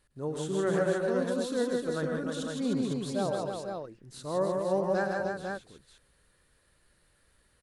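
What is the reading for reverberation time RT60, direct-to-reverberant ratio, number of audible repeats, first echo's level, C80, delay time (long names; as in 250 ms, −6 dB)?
no reverb audible, no reverb audible, 5, −8.5 dB, no reverb audible, 107 ms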